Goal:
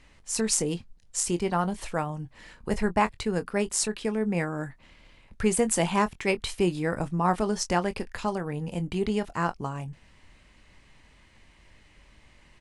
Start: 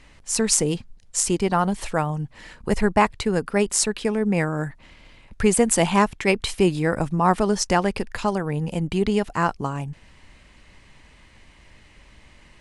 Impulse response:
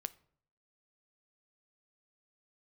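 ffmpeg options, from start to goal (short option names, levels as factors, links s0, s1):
-filter_complex "[0:a]asplit=2[s0][s1];[s1]adelay=23,volume=0.251[s2];[s0][s2]amix=inputs=2:normalize=0,volume=0.501"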